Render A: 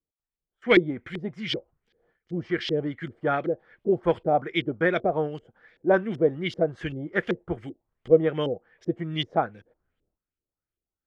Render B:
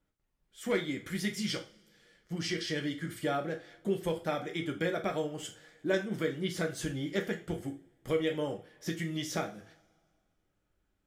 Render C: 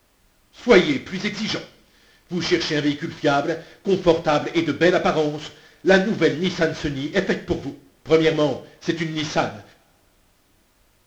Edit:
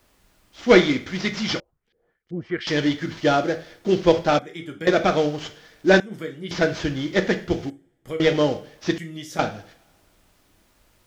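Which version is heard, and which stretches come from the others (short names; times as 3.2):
C
1.6–2.67 from A
4.39–4.87 from B
6–6.51 from B
7.7–8.2 from B
8.98–9.39 from B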